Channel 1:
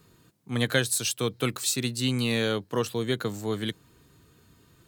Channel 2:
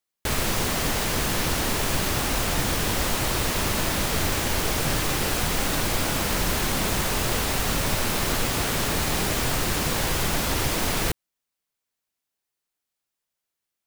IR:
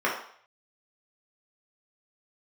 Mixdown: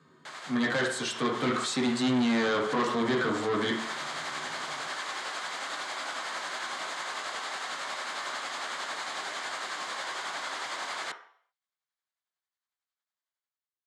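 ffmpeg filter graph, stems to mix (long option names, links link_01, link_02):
-filter_complex "[0:a]bandreject=frequency=60:width_type=h:width=6,bandreject=frequency=120:width_type=h:width=6,volume=-4.5dB,asplit=3[link_01][link_02][link_03];[link_02]volume=-7.5dB[link_04];[1:a]highpass=760,tremolo=f=11:d=0.41,volume=-12.5dB,asplit=2[link_05][link_06];[link_06]volume=-19dB[link_07];[link_03]apad=whole_len=611301[link_08];[link_05][link_08]sidechaincompress=threshold=-37dB:ratio=8:attack=5.5:release=189[link_09];[2:a]atrim=start_sample=2205[link_10];[link_04][link_07]amix=inputs=2:normalize=0[link_11];[link_11][link_10]afir=irnorm=-1:irlink=0[link_12];[link_01][link_09][link_12]amix=inputs=3:normalize=0,dynaudnorm=framelen=110:gausssize=9:maxgain=9dB,asoftclip=type=tanh:threshold=-22.5dB,highpass=frequency=120:width=0.5412,highpass=frequency=120:width=1.3066,equalizer=frequency=490:width_type=q:width=4:gain=-6,equalizer=frequency=2600:width_type=q:width=4:gain=-8,equalizer=frequency=5600:width_type=q:width=4:gain=-9,lowpass=frequency=6700:width=0.5412,lowpass=frequency=6700:width=1.3066"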